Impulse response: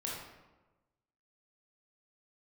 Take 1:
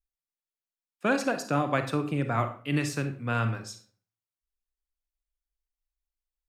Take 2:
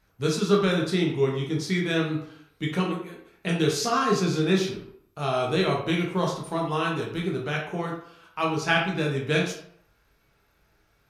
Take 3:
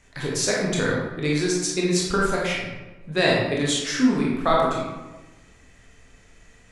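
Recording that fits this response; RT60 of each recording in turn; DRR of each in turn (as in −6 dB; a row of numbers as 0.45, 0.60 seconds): 3; 0.50, 0.65, 1.2 seconds; 7.5, −2.0, −4.5 decibels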